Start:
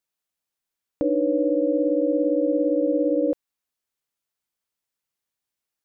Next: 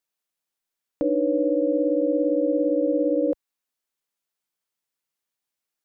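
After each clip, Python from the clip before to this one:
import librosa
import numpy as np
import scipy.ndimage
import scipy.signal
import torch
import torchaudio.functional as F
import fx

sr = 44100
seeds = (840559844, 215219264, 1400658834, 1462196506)

y = fx.peak_eq(x, sr, hz=67.0, db=-14.5, octaves=1.1)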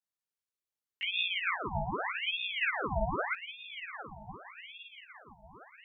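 y = fx.chorus_voices(x, sr, voices=6, hz=0.69, base_ms=17, depth_ms=2.3, mix_pct=65)
y = fx.echo_diffused(y, sr, ms=921, feedback_pct=50, wet_db=-12)
y = fx.ring_lfo(y, sr, carrier_hz=1700.0, swing_pct=80, hz=0.83)
y = F.gain(torch.from_numpy(y), -5.0).numpy()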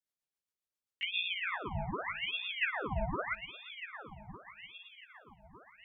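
y = fx.rotary(x, sr, hz=7.5)
y = y + 10.0 ** (-22.5 / 20.0) * np.pad(y, (int(352 * sr / 1000.0), 0))[:len(y)]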